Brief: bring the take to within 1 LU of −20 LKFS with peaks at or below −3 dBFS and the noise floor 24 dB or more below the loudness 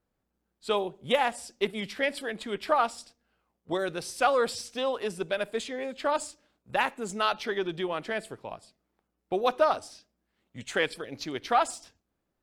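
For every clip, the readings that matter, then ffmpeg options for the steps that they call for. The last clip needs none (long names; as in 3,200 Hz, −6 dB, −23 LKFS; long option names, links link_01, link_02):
integrated loudness −29.5 LKFS; sample peak −11.5 dBFS; target loudness −20.0 LKFS
→ -af "volume=9.5dB,alimiter=limit=-3dB:level=0:latency=1"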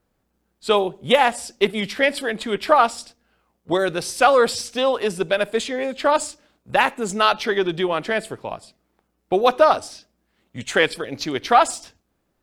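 integrated loudness −20.5 LKFS; sample peak −3.0 dBFS; background noise floor −72 dBFS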